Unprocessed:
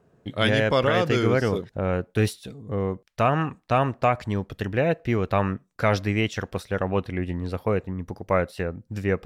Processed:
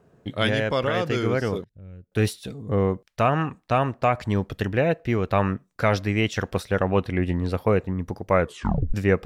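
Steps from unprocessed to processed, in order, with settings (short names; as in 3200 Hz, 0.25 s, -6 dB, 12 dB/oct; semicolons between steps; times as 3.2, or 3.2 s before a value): 1.64–2.12 passive tone stack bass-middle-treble 10-0-1; vocal rider within 4 dB 0.5 s; 8.41 tape stop 0.53 s; gain +1 dB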